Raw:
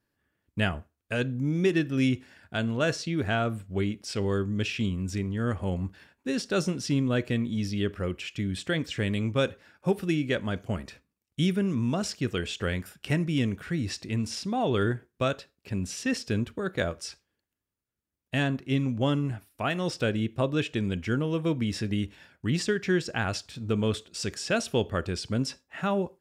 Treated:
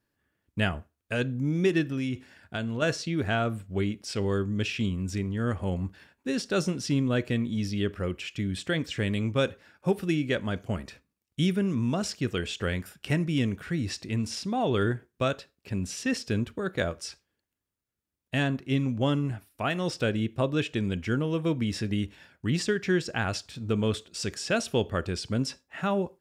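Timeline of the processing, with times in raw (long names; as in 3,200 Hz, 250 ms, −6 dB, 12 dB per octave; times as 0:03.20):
0:01.89–0:02.82: downward compressor, threshold −26 dBFS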